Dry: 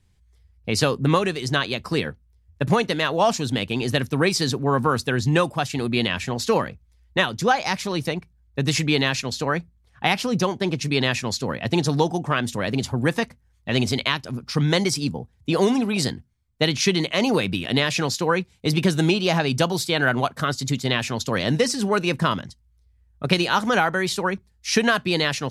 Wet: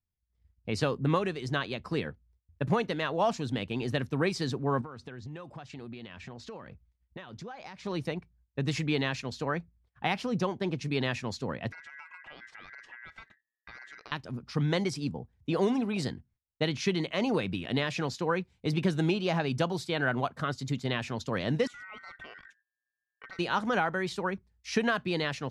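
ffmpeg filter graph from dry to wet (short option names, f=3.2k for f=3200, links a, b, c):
-filter_complex "[0:a]asettb=1/sr,asplit=3[a][b][c];[a]atrim=end=4.814[d];[b]atrim=start=4.81:end=7.86,asetpts=PTS-STARTPTS,afade=t=in:d=0.004:c=qsin,afade=t=out:st=3.046:d=0.004:c=qsin,lowpass=7.2k,acompressor=threshold=-31dB:ratio=10:attack=3.2:release=140:knee=1:detection=peak[e];[c]atrim=start=7.856[f];[d][e]acrossfade=d=0.004:c1=hsin:c2=qsin[g];[g][f]acrossfade=d=0.004:c1=qsin:c2=hsin,asettb=1/sr,asplit=3[h][i][j];[h]atrim=end=11.724[k];[i]atrim=start=11.72:end=14.12,asetpts=PTS-STARTPTS,afade=t=in:d=0.004:c=qsin,afade=t=out:st=2.396:d=0.004:c=qsin,aeval=exprs='val(0)*sin(2*PI*1800*n/s)':c=same,acompressor=threshold=-35dB:ratio=6:attack=3.2:release=140:knee=1:detection=peak,lowpass=5.7k[l];[j]atrim=start=14.116[m];[k][l]acrossfade=d=0.004:c1=hsin:c2=qsin[n];[n][m]acrossfade=d=0.004:c1=qsin:c2=hsin,asettb=1/sr,asplit=3[o][p][q];[o]atrim=end=21.674[r];[p]atrim=start=21.67:end=23.39,asetpts=PTS-STARTPTS,afade=t=in:d=0.004:c=qsin,afade=t=out:st=1.716:d=0.004:c=qsin,lowpass=f=3.3k:p=1,acompressor=threshold=-35dB:ratio=3:attack=3.2:release=140:knee=1:detection=peak,aeval=exprs='val(0)*sin(2*PI*1700*n/s)':c=same[s];[q]atrim=start=23.386[t];[r][s]acrossfade=d=0.004:c1=hsin:c2=qsin[u];[u][t]acrossfade=d=0.004:c1=qsin:c2=hsin,lowpass=11k,agate=range=-20dB:threshold=-55dB:ratio=16:detection=peak,highshelf=f=4.1k:g=-11,volume=-7.5dB"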